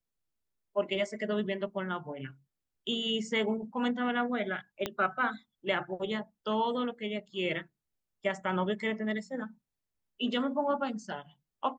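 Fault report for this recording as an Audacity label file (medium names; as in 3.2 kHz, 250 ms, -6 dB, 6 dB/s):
4.860000	4.860000	pop -16 dBFS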